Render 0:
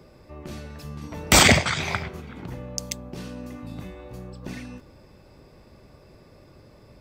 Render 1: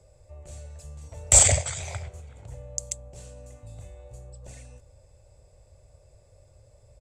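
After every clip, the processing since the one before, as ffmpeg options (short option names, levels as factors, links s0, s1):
-af "firequalizer=gain_entry='entry(100,0);entry(180,-21);entry(310,-23);entry(540,-3);entry(1100,-17);entry(2300,-13);entry(5200,-10);entry(7500,9);entry(14000,-20)':delay=0.05:min_phase=1"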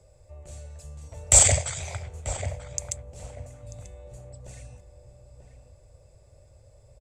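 -filter_complex "[0:a]asplit=2[s0][s1];[s1]adelay=939,lowpass=f=1400:p=1,volume=0.422,asplit=2[s2][s3];[s3]adelay=939,lowpass=f=1400:p=1,volume=0.27,asplit=2[s4][s5];[s5]adelay=939,lowpass=f=1400:p=1,volume=0.27[s6];[s0][s2][s4][s6]amix=inputs=4:normalize=0"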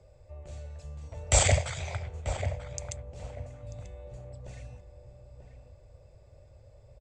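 -af "lowpass=4400"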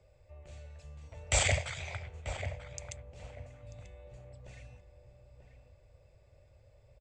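-af "equalizer=f=2400:t=o:w=1.5:g=7.5,volume=0.447"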